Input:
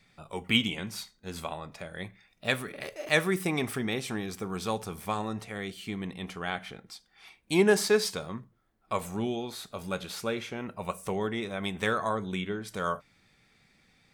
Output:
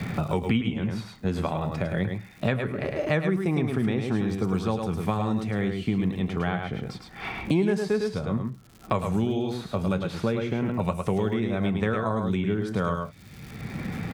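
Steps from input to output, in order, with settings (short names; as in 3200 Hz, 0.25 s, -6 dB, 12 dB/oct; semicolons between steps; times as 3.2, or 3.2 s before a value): HPF 85 Hz; RIAA curve playback; crackle 150/s -53 dBFS; on a send: echo 0.105 s -5.5 dB; on the sum: three-band squash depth 100%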